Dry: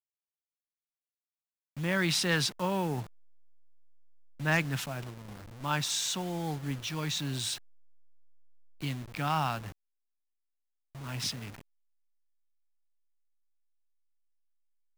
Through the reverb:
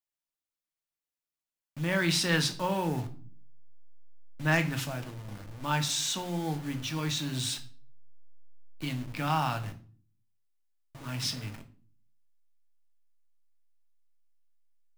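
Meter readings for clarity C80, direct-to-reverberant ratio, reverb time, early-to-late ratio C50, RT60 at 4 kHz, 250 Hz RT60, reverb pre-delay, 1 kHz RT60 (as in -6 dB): 19.0 dB, 6.5 dB, 0.45 s, 14.0 dB, 0.35 s, 0.70 s, 3 ms, 0.40 s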